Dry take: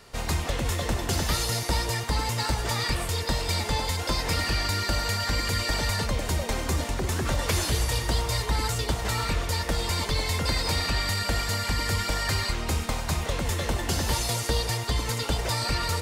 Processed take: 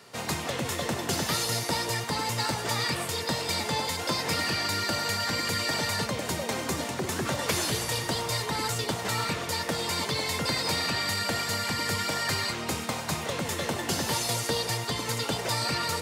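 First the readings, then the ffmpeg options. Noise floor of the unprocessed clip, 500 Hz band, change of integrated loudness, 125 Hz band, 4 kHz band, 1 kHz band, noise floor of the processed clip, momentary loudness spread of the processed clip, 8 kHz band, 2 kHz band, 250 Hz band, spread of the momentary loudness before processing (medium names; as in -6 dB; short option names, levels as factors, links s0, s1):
-32 dBFS, 0.0 dB, -1.5 dB, -6.5 dB, 0.0 dB, 0.0 dB, -35 dBFS, 4 LU, 0.0 dB, 0.0 dB, 0.0 dB, 3 LU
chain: -af "highpass=f=120:w=0.5412,highpass=f=120:w=1.3066"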